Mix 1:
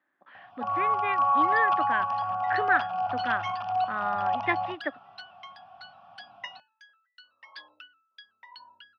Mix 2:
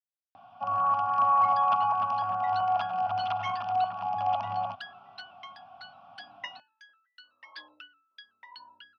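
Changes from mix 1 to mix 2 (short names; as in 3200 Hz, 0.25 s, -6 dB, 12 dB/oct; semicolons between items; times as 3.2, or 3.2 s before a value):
speech: muted; master: add bell 280 Hz +8 dB 0.41 oct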